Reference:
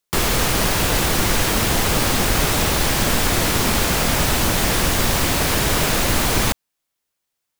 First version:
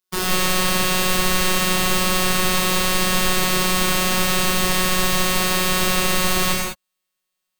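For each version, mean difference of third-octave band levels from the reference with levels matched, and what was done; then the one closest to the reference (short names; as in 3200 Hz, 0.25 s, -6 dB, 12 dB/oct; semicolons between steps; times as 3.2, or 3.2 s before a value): 4.0 dB: robotiser 184 Hz; non-linear reverb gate 0.23 s flat, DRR -4.5 dB; gain -4 dB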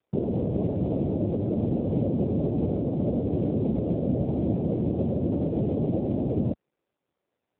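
24.5 dB: elliptic low-pass 590 Hz, stop band 60 dB; AMR-NB 5.9 kbps 8000 Hz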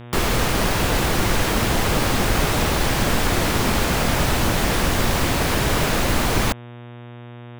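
2.0 dB: high shelf 3700 Hz -7 dB; buzz 120 Hz, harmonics 31, -38 dBFS -6 dB/oct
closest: third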